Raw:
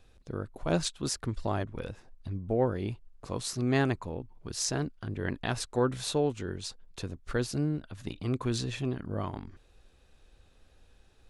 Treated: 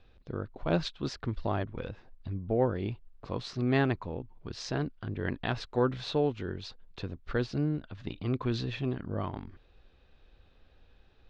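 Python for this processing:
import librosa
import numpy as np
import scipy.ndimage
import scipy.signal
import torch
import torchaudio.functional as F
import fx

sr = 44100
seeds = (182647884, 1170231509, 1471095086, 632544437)

y = scipy.signal.sosfilt(scipy.signal.butter(4, 4300.0, 'lowpass', fs=sr, output='sos'), x)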